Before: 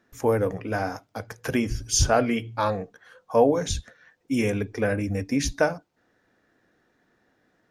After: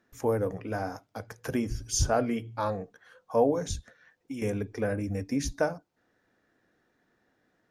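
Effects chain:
0:03.75–0:04.42: downward compressor 12 to 1, threshold −30 dBFS, peak gain reduction 11 dB
dynamic equaliser 2,700 Hz, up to −7 dB, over −43 dBFS, Q 0.86
level −4.5 dB

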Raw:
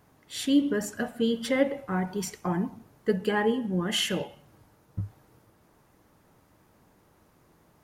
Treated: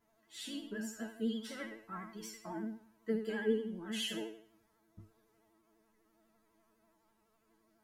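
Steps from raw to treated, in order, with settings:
resonators tuned to a chord A3 fifth, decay 0.49 s
pitch vibrato 12 Hz 61 cents
level +7 dB

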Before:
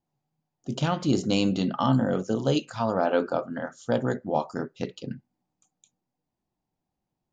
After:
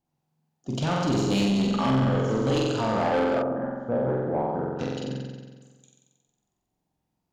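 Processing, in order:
on a send: flutter between parallel walls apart 7.8 metres, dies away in 1.4 s
on the sum: soft clipping −18.5 dBFS, distortion −11 dB
harmonic generator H 4 −25 dB, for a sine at −18.5 dBFS
0:03.42–0:04.79: low-pass filter 1,000 Hz 12 dB per octave

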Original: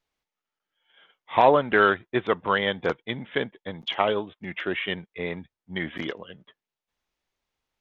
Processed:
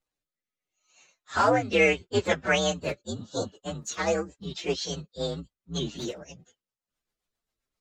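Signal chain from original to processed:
partials spread apart or drawn together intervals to 128%
healed spectral selection 0:03.08–0:03.49, 1,600–3,300 Hz after
rotating-speaker cabinet horn 0.75 Hz, later 7.5 Hz, at 0:03.73
level +4 dB

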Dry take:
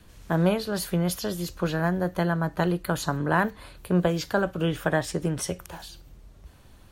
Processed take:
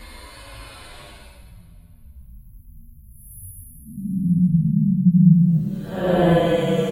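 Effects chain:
time-frequency box erased 0:03.70–0:04.01, 250–9,900 Hz
dynamic equaliser 1,100 Hz, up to −5 dB, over −38 dBFS, Q 0.71
extreme stretch with random phases 14×, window 0.05 s, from 0:03.61
convolution reverb RT60 2.6 s, pre-delay 101 ms, DRR 11.5 dB
barber-pole flanger 9.4 ms −1.1 Hz
level +8 dB

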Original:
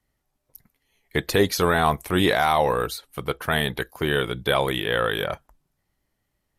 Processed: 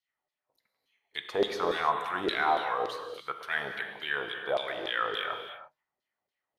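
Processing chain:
auto-filter band-pass saw down 3.5 Hz 480–4,400 Hz
reverb whose tail is shaped and stops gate 360 ms flat, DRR 5 dB
level −1.5 dB

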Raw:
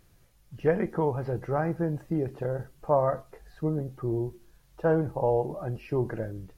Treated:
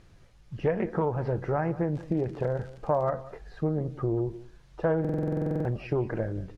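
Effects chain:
downward compressor 2.5 to 1, threshold −31 dBFS, peak gain reduction 9 dB
0:01.93–0:03.12: surface crackle 66 per second −41 dBFS
high-frequency loss of the air 79 metres
single-tap delay 184 ms −18 dB
buffer that repeats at 0:05.00, samples 2,048, times 13
highs frequency-modulated by the lows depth 0.27 ms
level +5.5 dB

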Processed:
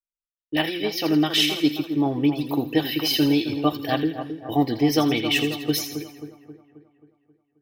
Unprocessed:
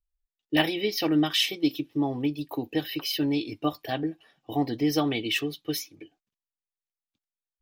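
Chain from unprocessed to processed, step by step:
noise gate with hold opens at −51 dBFS
automatic gain control gain up to 11.5 dB
echo with a time of its own for lows and highs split 1,500 Hz, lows 267 ms, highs 82 ms, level −9 dB
level −4.5 dB

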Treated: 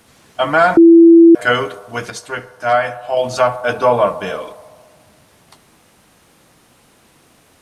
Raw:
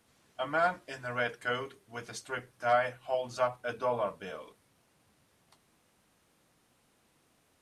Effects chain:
0:02.10–0:03.17: tuned comb filter 99 Hz, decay 1.3 s, harmonics odd, mix 50%
feedback echo with a band-pass in the loop 69 ms, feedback 80%, band-pass 750 Hz, level −15.5 dB
0:00.77–0:01.35: beep over 334 Hz −14.5 dBFS
boost into a limiter +19 dB
level −1 dB

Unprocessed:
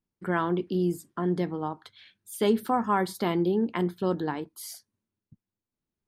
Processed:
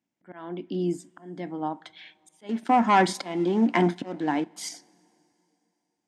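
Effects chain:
volume swells 786 ms
0:02.49–0:04.69: leveller curve on the samples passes 2
loudspeaker in its box 210–7,600 Hz, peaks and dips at 280 Hz +6 dB, 420 Hz −9 dB, 700 Hz +5 dB, 1,200 Hz −7 dB, 2,100 Hz +4 dB, 4,300 Hz −7 dB
coupled-rooms reverb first 0.28 s, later 3.2 s, from −18 dB, DRR 19.5 dB
level +6 dB

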